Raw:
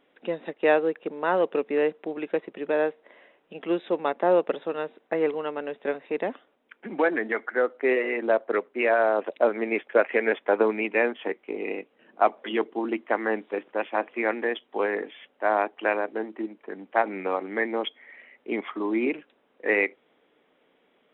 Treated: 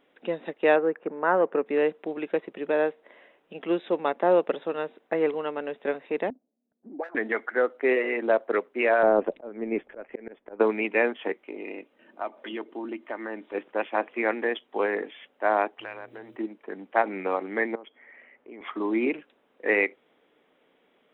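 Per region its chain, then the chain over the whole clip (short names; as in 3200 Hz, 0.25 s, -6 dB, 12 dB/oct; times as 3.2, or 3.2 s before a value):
0.76–1.66 HPF 100 Hz + resonant high shelf 2400 Hz -12.5 dB, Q 1.5
6.3–7.15 median filter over 41 samples + bell 700 Hz +13 dB 0.88 oct + auto-wah 220–1700 Hz, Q 7, up, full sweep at -14 dBFS
9.03–10.6 tilt -4 dB/oct + auto swell 0.658 s
11.42–13.55 comb 3.3 ms, depth 33% + compressor 2:1, threshold -37 dBFS
15.79–16.35 compressor 3:1, threshold -38 dBFS + tilt +3 dB/oct + buzz 120 Hz, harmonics 5, -58 dBFS -2 dB/oct
17.75–18.61 LPF 2100 Hz + compressor 3:1, threshold -46 dBFS
whole clip: dry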